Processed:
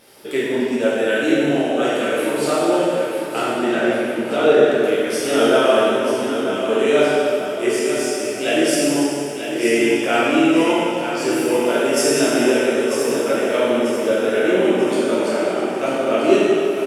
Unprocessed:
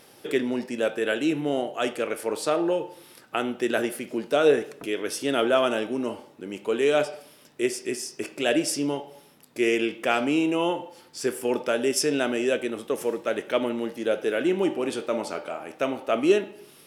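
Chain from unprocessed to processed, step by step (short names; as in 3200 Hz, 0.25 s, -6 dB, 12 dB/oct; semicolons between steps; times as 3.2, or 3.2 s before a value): 3.4–4.65 air absorption 84 m; feedback echo 0.942 s, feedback 42%, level -8.5 dB; plate-style reverb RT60 2.5 s, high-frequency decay 0.85×, DRR -8.5 dB; gain -1.5 dB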